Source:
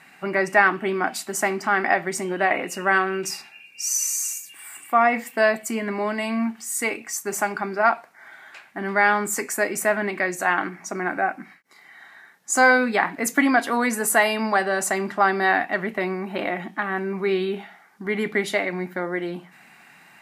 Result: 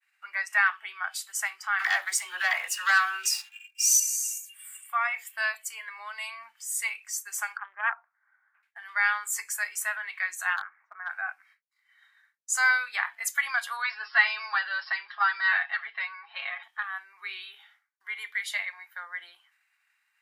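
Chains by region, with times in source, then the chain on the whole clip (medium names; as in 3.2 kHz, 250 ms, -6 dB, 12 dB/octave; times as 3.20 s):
1.79–4.00 s: dynamic bell 2.7 kHz, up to -6 dB, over -37 dBFS, Q 1.8 + waveshaping leveller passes 2 + phase dispersion lows, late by 84 ms, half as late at 440 Hz
7.57–8.63 s: low-pass 1.5 kHz 24 dB/octave + loudspeaker Doppler distortion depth 0.45 ms
10.56–11.10 s: low-pass 1.8 kHz 24 dB/octave + overload inside the chain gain 16 dB
13.82–16.63 s: brick-wall FIR low-pass 5.5 kHz + bass shelf 220 Hz -9.5 dB + comb 7.3 ms, depth 99%
whole clip: expander -43 dBFS; spectral noise reduction 9 dB; high-pass 1.2 kHz 24 dB/octave; trim -3.5 dB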